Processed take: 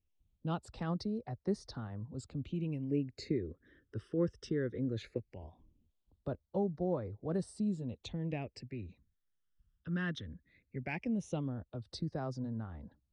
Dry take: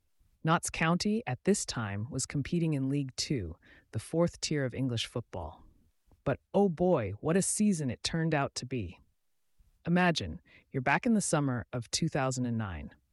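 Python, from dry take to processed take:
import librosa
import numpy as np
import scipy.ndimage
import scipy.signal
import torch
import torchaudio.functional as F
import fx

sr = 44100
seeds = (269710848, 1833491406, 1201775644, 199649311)

y = fx.peak_eq(x, sr, hz=410.0, db=13.5, octaves=1.2, at=(2.91, 5.18))
y = fx.phaser_stages(y, sr, stages=12, low_hz=740.0, high_hz=2600.0, hz=0.18, feedback_pct=25)
y = fx.air_absorb(y, sr, metres=120.0)
y = y * 10.0 ** (-7.5 / 20.0)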